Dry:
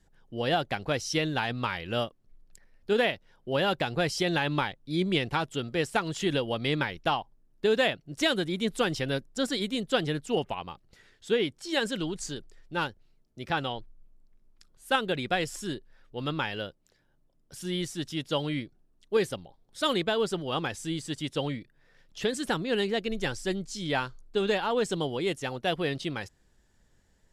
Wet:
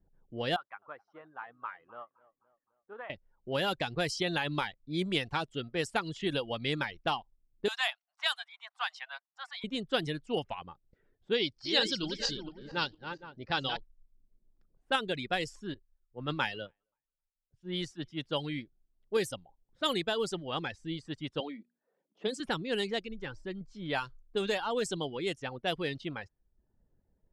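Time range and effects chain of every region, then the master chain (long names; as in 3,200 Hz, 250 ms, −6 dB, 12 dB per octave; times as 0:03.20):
0:00.56–0:03.10: resonant band-pass 1,200 Hz, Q 3.2 + feedback echo with a swinging delay time 259 ms, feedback 48%, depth 52 cents, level −16 dB
0:07.68–0:09.64: Butterworth high-pass 710 Hz 72 dB per octave + parametric band 1,100 Hz +4 dB 0.34 octaves
0:11.34–0:13.77: feedback delay that plays each chunk backwards 230 ms, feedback 54%, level −6.5 dB + low-pass with resonance 4,800 Hz, resonance Q 5
0:15.74–0:18.25: feedback echo with a high-pass in the loop 266 ms, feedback 58%, high-pass 760 Hz, level −22 dB + multiband upward and downward expander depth 100%
0:21.40–0:22.40: Chebyshev high-pass filter 200 Hz, order 4 + parametric band 1,700 Hz −5.5 dB 0.7 octaves + mains-hum notches 60/120/180/240 Hz
0:23.01–0:23.61: parametric band 710 Hz −8 dB 0.27 octaves + hum removal 307.2 Hz, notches 3 + downward compressor 1.5 to 1, threshold −36 dBFS
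whole clip: reverb reduction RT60 0.54 s; low-pass that shuts in the quiet parts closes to 650 Hz, open at −22.5 dBFS; high-shelf EQ 4,300 Hz +8 dB; level −4.5 dB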